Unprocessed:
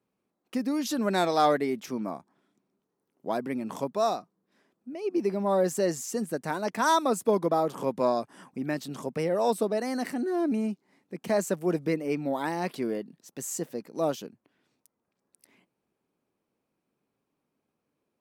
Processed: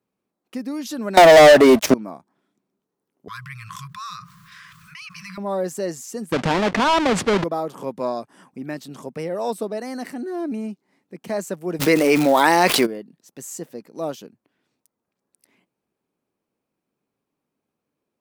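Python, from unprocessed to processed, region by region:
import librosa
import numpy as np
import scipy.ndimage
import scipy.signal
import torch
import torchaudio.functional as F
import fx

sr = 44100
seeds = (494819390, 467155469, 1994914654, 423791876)

y = fx.chain(x, sr, fx.peak_eq(hz=620.0, db=15.0, octaves=0.31),
    fx.leveller(passes=5),
    fx.band_squash(depth_pct=70), at=(1.17, 1.94))
y = fx.chain(y, sr, fx.brickwall_bandstop(low_hz=170.0, high_hz=1000.0),
    fx.peak_eq(hz=12000.0, db=-5.5, octaves=1.4),
    fx.env_flatten(amount_pct=70), at=(3.28, 5.38))
y = fx.chain(y, sr, fx.halfwave_hold(),
    fx.lowpass(hz=4200.0, slope=12),
    fx.env_flatten(amount_pct=70), at=(6.32, 7.44))
y = fx.highpass(y, sr, hz=690.0, slope=6, at=(11.79, 12.85), fade=0.02)
y = fx.dmg_crackle(y, sr, seeds[0], per_s=470.0, level_db=-42.0, at=(11.79, 12.85), fade=0.02)
y = fx.env_flatten(y, sr, amount_pct=70, at=(11.79, 12.85), fade=0.02)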